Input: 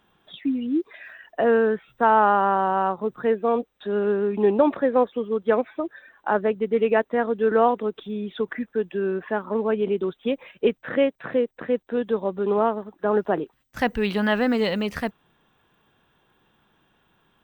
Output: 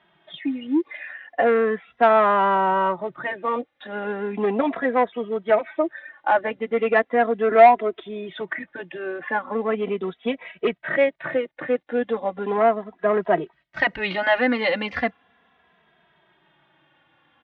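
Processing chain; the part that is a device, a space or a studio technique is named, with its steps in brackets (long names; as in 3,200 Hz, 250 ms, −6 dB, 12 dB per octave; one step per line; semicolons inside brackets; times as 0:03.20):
0:07.49–0:08.29: comb filter 2.9 ms, depth 63%
barber-pole flanger into a guitar amplifier (barber-pole flanger 2.7 ms −0.37 Hz; soft clipping −15 dBFS, distortion −17 dB; loudspeaker in its box 95–4,100 Hz, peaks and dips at 110 Hz −9 dB, 210 Hz −5 dB, 420 Hz −5 dB, 680 Hz +6 dB, 2,000 Hz +9 dB)
level +5.5 dB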